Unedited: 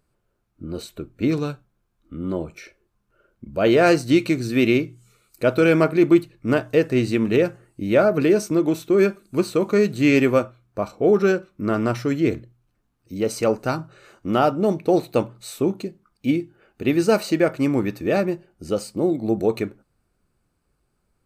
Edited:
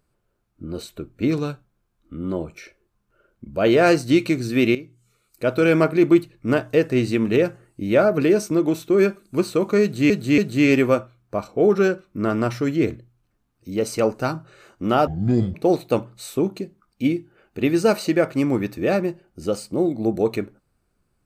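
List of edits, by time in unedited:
4.75–5.76 s: fade in, from -15.5 dB
9.82–10.10 s: loop, 3 plays
14.51–14.78 s: speed 57%

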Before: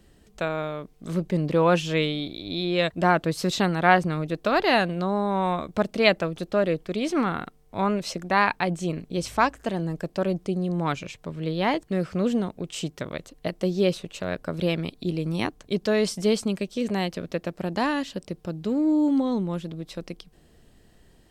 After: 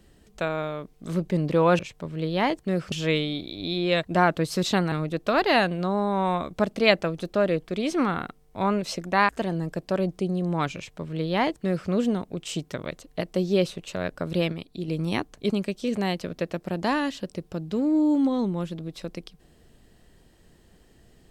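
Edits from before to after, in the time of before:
3.79–4.10 s: delete
8.47–9.56 s: delete
11.03–12.16 s: copy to 1.79 s
14.79–15.15 s: gain -5 dB
15.77–16.43 s: delete

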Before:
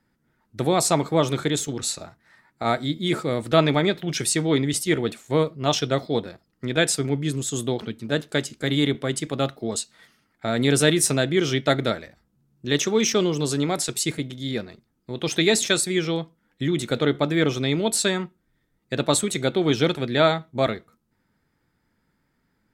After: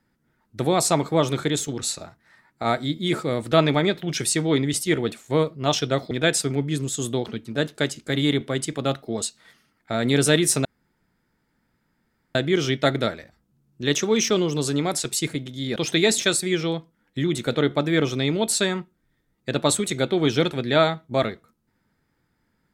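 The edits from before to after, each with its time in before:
6.11–6.65 s: delete
11.19 s: insert room tone 1.70 s
14.60–15.20 s: delete

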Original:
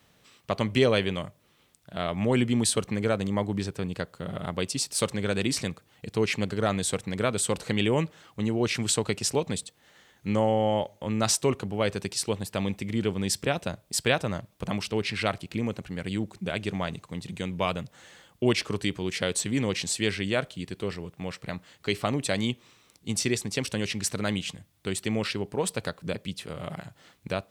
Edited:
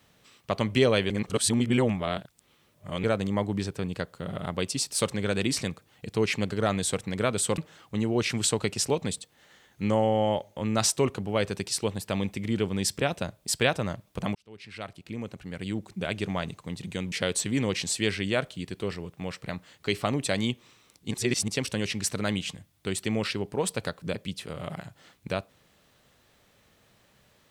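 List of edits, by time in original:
1.10–3.04 s: reverse
7.58–8.03 s: delete
14.80–16.55 s: fade in
17.57–19.12 s: delete
23.11–23.48 s: reverse

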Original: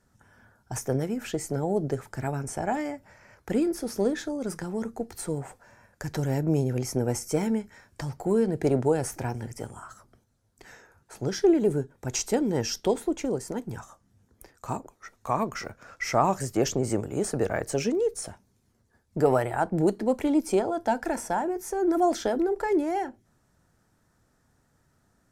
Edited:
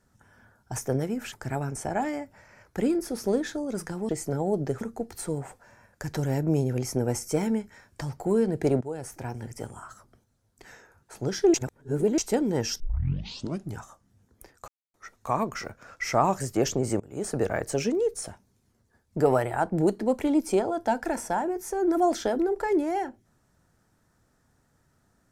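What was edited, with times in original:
1.32–2.04 s: move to 4.81 s
8.81–9.64 s: fade in, from -15 dB
11.54–12.18 s: reverse
12.80 s: tape start 1.00 s
14.68–14.94 s: mute
17.00–17.36 s: fade in, from -23 dB

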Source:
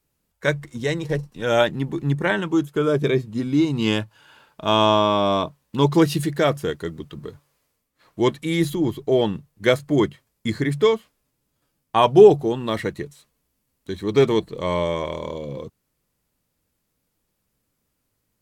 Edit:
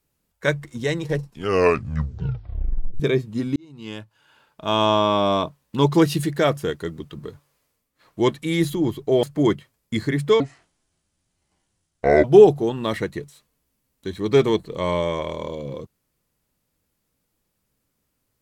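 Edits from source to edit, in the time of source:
1.20 s: tape stop 1.80 s
3.56–5.16 s: fade in
9.23–9.76 s: delete
10.93–12.07 s: speed 62%

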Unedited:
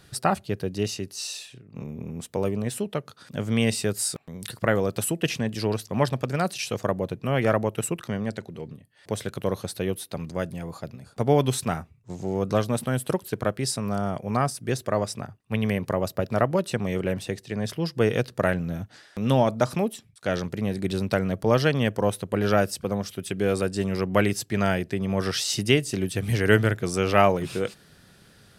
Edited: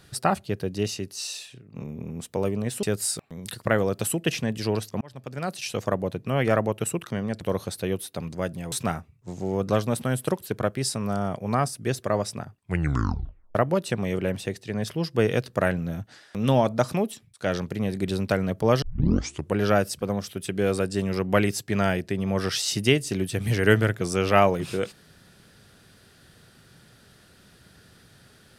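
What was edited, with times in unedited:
2.83–3.80 s: delete
5.98–6.77 s: fade in
8.38–9.38 s: delete
10.69–11.54 s: delete
15.38 s: tape stop 0.99 s
21.64 s: tape start 0.73 s

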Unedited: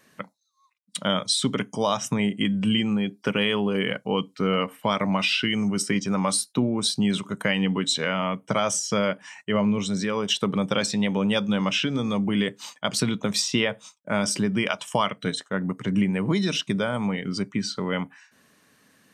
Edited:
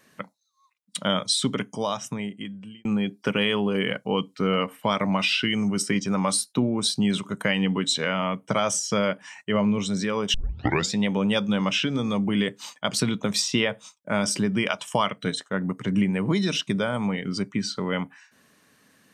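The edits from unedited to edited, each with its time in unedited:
1.37–2.85 s: fade out
10.34 s: tape start 0.58 s

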